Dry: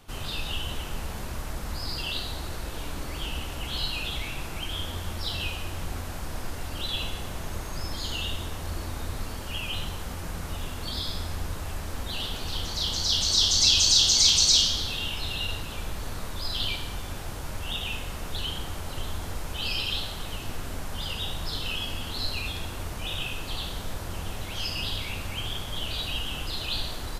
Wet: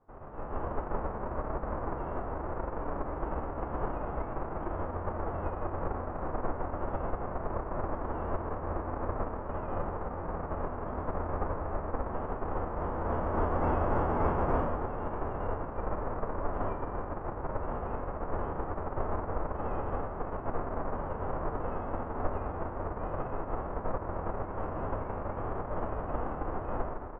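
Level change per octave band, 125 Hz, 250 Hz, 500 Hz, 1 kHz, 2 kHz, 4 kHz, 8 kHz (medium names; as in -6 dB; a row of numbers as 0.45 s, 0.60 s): -2.0 dB, +2.5 dB, +7.5 dB, +6.0 dB, -9.5 dB, under -40 dB, under -40 dB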